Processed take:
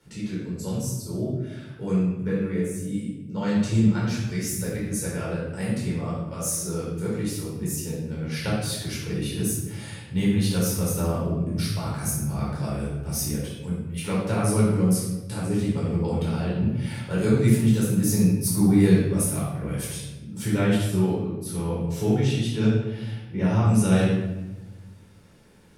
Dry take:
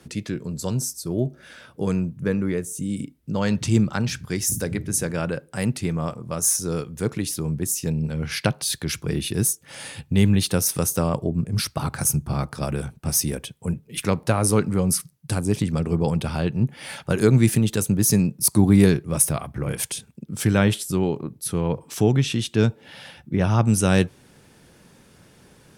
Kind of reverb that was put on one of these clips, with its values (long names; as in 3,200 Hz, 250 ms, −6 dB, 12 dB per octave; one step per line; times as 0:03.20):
rectangular room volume 510 cubic metres, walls mixed, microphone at 4.5 metres
level −14.5 dB